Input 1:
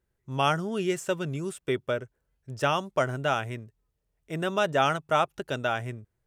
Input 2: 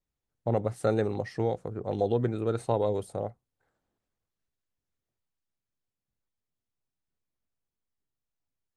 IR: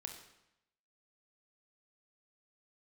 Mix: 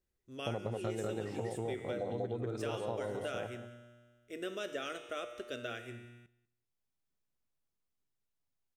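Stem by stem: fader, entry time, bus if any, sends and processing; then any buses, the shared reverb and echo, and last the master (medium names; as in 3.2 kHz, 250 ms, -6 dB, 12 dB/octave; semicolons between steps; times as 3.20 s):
+2.0 dB, 0.00 s, send -3.5 dB, echo send -17.5 dB, peak limiter -15.5 dBFS, peak gain reduction 5 dB; static phaser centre 370 Hz, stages 4; feedback comb 120 Hz, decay 1.7 s, mix 80%
-2.0 dB, 0.00 s, no send, echo send -5.5 dB, hum notches 50/100 Hz; auto duck -8 dB, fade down 1.70 s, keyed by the first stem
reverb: on, RT60 0.85 s, pre-delay 24 ms
echo: feedback delay 193 ms, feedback 16%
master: compression 6:1, threshold -33 dBFS, peak gain reduction 9 dB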